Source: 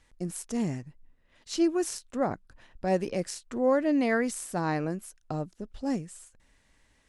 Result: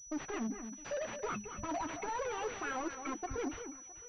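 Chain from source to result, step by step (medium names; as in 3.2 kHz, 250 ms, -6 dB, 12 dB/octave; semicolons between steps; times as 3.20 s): expander on every frequency bin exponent 2; hum notches 60/120 Hz; in parallel at -3.5 dB: integer overflow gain 28.5 dB; on the sum: compression, threshold -33 dBFS, peak gain reduction 11.5 dB; overdrive pedal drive 37 dB, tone 1.1 kHz, clips at -24.5 dBFS; peak limiter -36 dBFS, peak gain reduction 10.5 dB; flange 0.55 Hz, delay 9.9 ms, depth 8.3 ms, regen -50%; echo whose repeats swap between lows and highs 383 ms, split 1.5 kHz, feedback 54%, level -9 dB; speed mistake 45 rpm record played at 78 rpm; class-D stage that switches slowly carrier 5.9 kHz; trim +7 dB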